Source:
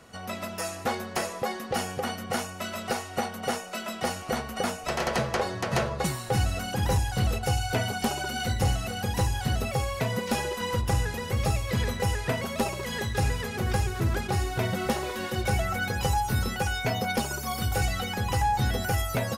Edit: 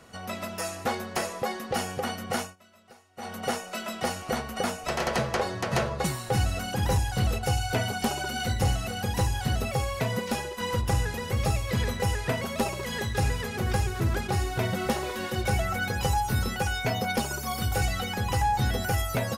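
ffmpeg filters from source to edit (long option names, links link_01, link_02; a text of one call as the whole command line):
ffmpeg -i in.wav -filter_complex "[0:a]asplit=4[link_01][link_02][link_03][link_04];[link_01]atrim=end=2.56,asetpts=PTS-STARTPTS,afade=type=out:start_time=2.41:duration=0.15:silence=0.0668344[link_05];[link_02]atrim=start=2.56:end=3.17,asetpts=PTS-STARTPTS,volume=-23.5dB[link_06];[link_03]atrim=start=3.17:end=10.58,asetpts=PTS-STARTPTS,afade=type=in:duration=0.15:silence=0.0668344,afade=type=out:start_time=7.02:duration=0.39:silence=0.446684[link_07];[link_04]atrim=start=10.58,asetpts=PTS-STARTPTS,afade=type=in:duration=0.004:curve=hsin:silence=0.446684[link_08];[link_05][link_06][link_07][link_08]concat=n=4:v=0:a=1" out.wav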